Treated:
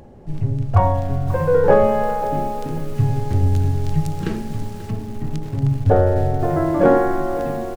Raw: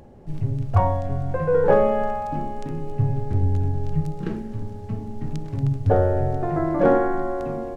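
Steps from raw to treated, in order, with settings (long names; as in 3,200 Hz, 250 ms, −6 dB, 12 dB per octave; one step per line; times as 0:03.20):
0:02.95–0:04.91: high-shelf EQ 2,500 Hz +12 dB
repeating echo 88 ms, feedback 44%, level −22.5 dB
feedback echo at a low word length 537 ms, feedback 35%, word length 6 bits, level −13.5 dB
level +3.5 dB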